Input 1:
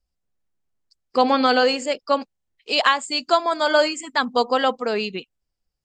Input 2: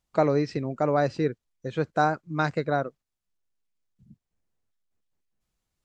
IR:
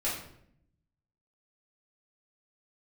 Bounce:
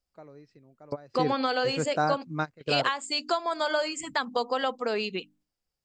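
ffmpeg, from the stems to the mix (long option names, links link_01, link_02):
-filter_complex "[0:a]lowshelf=frequency=86:gain=-10,bandreject=frequency=50:width_type=h:width=6,bandreject=frequency=100:width_type=h:width=6,bandreject=frequency=150:width_type=h:width=6,bandreject=frequency=200:width_type=h:width=6,bandreject=frequency=250:width_type=h:width=6,bandreject=frequency=300:width_type=h:width=6,acompressor=threshold=-25dB:ratio=3,volume=-1dB,asplit=2[link_01][link_02];[1:a]volume=-3.5dB[link_03];[link_02]apad=whole_len=257909[link_04];[link_03][link_04]sidechaingate=range=-23dB:threshold=-59dB:ratio=16:detection=peak[link_05];[link_01][link_05]amix=inputs=2:normalize=0"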